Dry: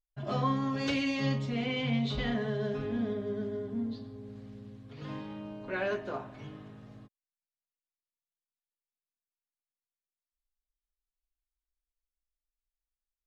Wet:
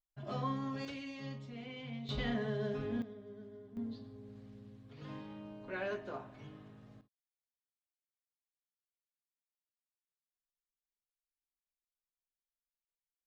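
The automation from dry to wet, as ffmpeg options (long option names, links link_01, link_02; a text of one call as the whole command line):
ffmpeg -i in.wav -af "asetnsamples=nb_out_samples=441:pad=0,asendcmd='0.85 volume volume -14.5dB;2.09 volume volume -4dB;3.02 volume volume -16dB;3.77 volume volume -6.5dB;7.01 volume volume -19dB',volume=-7.5dB" out.wav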